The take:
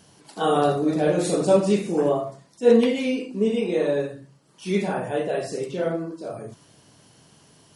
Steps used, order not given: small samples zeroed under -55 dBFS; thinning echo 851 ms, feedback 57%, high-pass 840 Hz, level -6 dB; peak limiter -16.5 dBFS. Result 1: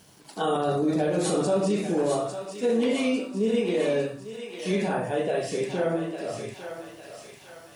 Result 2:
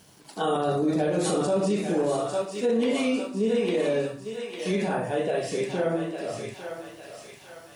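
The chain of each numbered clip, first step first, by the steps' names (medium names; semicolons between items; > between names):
peak limiter > small samples zeroed > thinning echo; small samples zeroed > thinning echo > peak limiter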